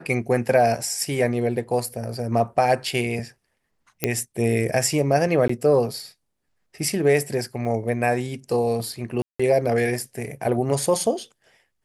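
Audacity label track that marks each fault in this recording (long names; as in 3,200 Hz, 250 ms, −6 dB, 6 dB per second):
4.040000	4.040000	click −5 dBFS
5.480000	5.490000	drop-out 14 ms
7.650000	7.650000	drop-out 2.5 ms
9.220000	9.390000	drop-out 175 ms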